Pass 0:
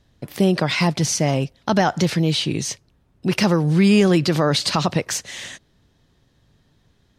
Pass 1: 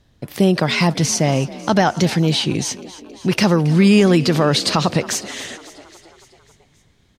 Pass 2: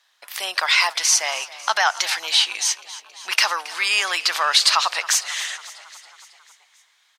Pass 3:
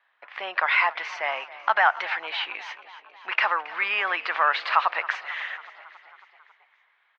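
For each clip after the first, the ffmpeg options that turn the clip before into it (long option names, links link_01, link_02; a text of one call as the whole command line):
ffmpeg -i in.wav -filter_complex "[0:a]asplit=7[link_01][link_02][link_03][link_04][link_05][link_06][link_07];[link_02]adelay=273,afreqshift=43,volume=-18dB[link_08];[link_03]adelay=546,afreqshift=86,volume=-22.2dB[link_09];[link_04]adelay=819,afreqshift=129,volume=-26.3dB[link_10];[link_05]adelay=1092,afreqshift=172,volume=-30.5dB[link_11];[link_06]adelay=1365,afreqshift=215,volume=-34.6dB[link_12];[link_07]adelay=1638,afreqshift=258,volume=-38.8dB[link_13];[link_01][link_08][link_09][link_10][link_11][link_12][link_13]amix=inputs=7:normalize=0,volume=2.5dB" out.wav
ffmpeg -i in.wav -af "highpass=frequency=970:width=0.5412,highpass=frequency=970:width=1.3066,volume=4dB" out.wav
ffmpeg -i in.wav -af "lowpass=frequency=2300:width=0.5412,lowpass=frequency=2300:width=1.3066" out.wav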